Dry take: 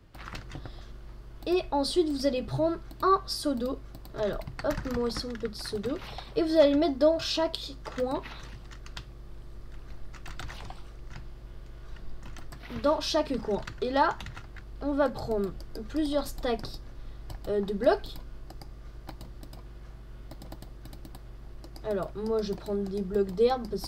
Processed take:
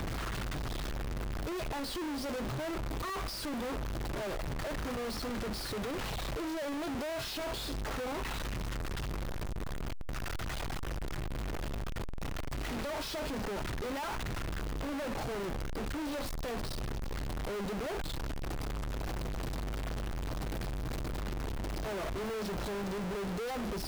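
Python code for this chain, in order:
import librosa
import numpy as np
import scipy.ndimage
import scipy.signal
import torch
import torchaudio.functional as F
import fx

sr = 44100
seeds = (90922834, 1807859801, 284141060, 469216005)

y = np.sign(x) * np.sqrt(np.mean(np.square(x)))
y = fx.high_shelf(y, sr, hz=3500.0, db=-7.0)
y = F.gain(torch.from_numpy(y), -4.5).numpy()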